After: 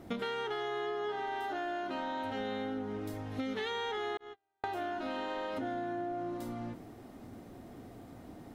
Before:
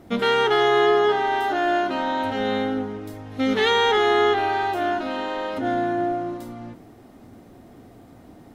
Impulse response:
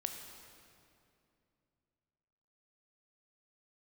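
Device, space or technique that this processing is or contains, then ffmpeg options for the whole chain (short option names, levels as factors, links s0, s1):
serial compression, leveller first: -filter_complex "[0:a]asettb=1/sr,asplit=3[s0][s1][s2];[s0]atrim=end=4.174[s3];[s1]atrim=start=4.17:end=4.64,asetpts=PTS-STARTPTS,afade=t=in:d=0.004:c=qsin,afade=t=out:st=0.466:d=0.004:c=qsin,agate=range=0.00126:threshold=0.2:ratio=16:detection=peak[s4];[s2]atrim=start=4.636[s5];[s3][s4]acrossfade=d=0.004:c1=hsin:c2=qsin[s6];[s6][s5]acrossfade=d=0.004:c1=qsin:c2=hsin,acompressor=threshold=0.0631:ratio=2,acompressor=threshold=0.0282:ratio=6,volume=0.708"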